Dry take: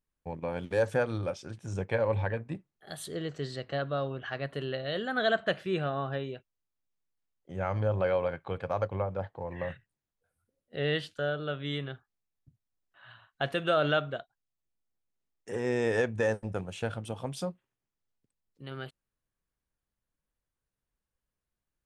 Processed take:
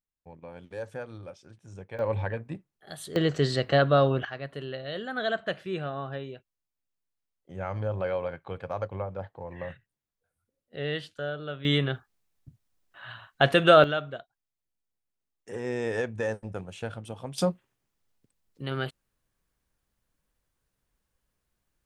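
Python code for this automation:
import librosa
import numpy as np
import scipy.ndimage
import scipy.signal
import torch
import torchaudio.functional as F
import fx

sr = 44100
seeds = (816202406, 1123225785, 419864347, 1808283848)

y = fx.gain(x, sr, db=fx.steps((0.0, -10.0), (1.99, 0.0), (3.16, 11.0), (4.25, -2.0), (11.65, 10.0), (13.84, -2.0), (17.38, 9.0)))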